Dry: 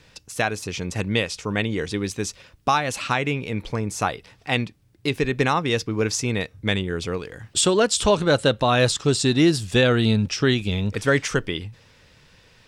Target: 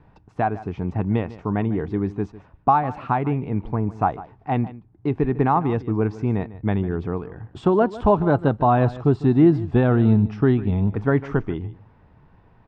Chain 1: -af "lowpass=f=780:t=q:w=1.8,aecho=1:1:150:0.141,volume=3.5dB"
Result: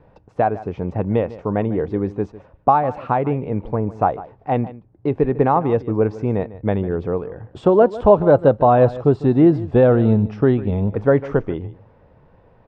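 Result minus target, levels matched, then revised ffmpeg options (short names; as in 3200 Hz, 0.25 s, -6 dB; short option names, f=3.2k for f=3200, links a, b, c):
500 Hz band +3.5 dB
-af "lowpass=f=780:t=q:w=1.8,equalizer=f=530:w=2.7:g=-13.5,aecho=1:1:150:0.141,volume=3.5dB"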